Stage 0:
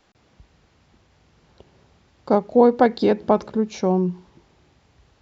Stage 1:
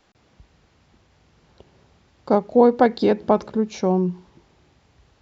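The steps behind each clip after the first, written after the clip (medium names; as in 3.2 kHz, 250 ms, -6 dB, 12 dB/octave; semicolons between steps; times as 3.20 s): no audible change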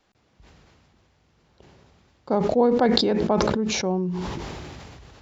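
decay stretcher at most 21 dB/s; trim -5.5 dB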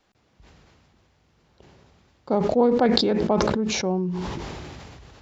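loudspeaker Doppler distortion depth 0.11 ms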